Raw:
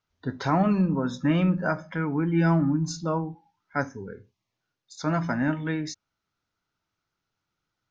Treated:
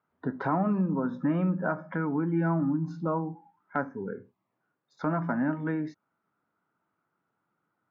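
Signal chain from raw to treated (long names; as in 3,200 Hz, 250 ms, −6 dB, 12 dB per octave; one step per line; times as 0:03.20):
Chebyshev band-pass filter 190–1,300 Hz, order 2
downward compressor 2 to 1, threshold −39 dBFS, peak gain reduction 11.5 dB
level +7 dB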